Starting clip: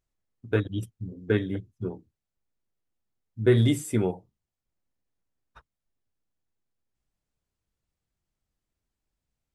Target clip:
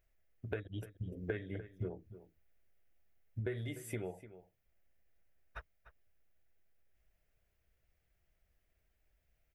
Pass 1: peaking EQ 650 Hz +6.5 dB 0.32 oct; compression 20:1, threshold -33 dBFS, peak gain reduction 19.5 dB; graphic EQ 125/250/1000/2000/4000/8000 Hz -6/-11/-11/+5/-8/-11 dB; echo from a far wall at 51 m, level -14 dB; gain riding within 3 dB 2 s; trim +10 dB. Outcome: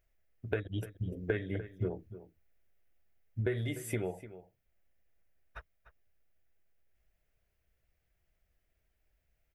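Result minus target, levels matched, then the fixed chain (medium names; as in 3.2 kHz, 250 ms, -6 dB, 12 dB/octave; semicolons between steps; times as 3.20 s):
compression: peak gain reduction -5.5 dB
peaking EQ 650 Hz +6.5 dB 0.32 oct; compression 20:1, threshold -39 dBFS, peak gain reduction 25.5 dB; graphic EQ 125/250/1000/2000/4000/8000 Hz -6/-11/-11/+5/-8/-11 dB; echo from a far wall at 51 m, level -14 dB; gain riding within 3 dB 2 s; trim +10 dB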